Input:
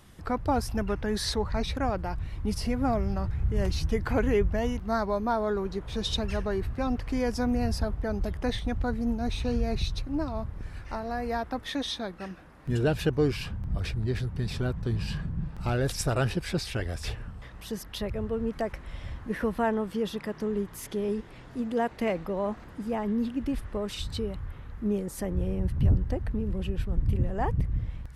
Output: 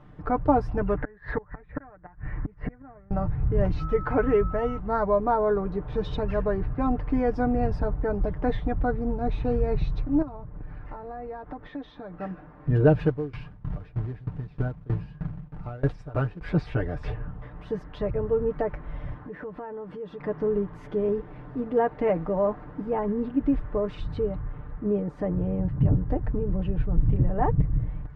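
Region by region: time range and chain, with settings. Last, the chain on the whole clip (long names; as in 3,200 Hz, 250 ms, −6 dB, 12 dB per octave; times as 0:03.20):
0:00.97–0:03.11: low-pass with resonance 1,800 Hz, resonance Q 5.2 + gate with flip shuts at −20 dBFS, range −27 dB
0:03.79–0:04.77: low-shelf EQ 350 Hz −5 dB + steady tone 1,300 Hz −37 dBFS
0:10.22–0:12.18: downward compressor, threshold −38 dBFS + high-frequency loss of the air 73 metres
0:13.02–0:16.41: floating-point word with a short mantissa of 2 bits + tremolo with a ramp in dB decaying 3.2 Hz, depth 23 dB
0:19.14–0:20.20: high-pass filter 130 Hz 6 dB per octave + downward compressor 5 to 1, threshold −39 dBFS
0:24.79–0:26.08: high-pass filter 74 Hz 6 dB per octave + high-shelf EQ 7,900 Hz −9 dB
whole clip: low-pass filter 1,300 Hz 12 dB per octave; comb filter 6.7 ms, depth 63%; level +4 dB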